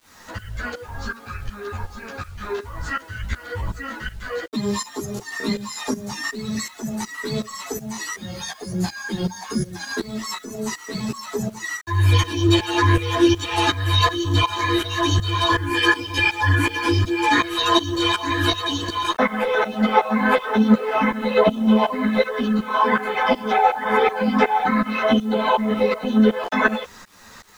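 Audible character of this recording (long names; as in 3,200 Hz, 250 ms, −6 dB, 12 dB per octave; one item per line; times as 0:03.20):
tremolo saw up 2.7 Hz, depth 90%
a quantiser's noise floor 10 bits, dither none
a shimmering, thickened sound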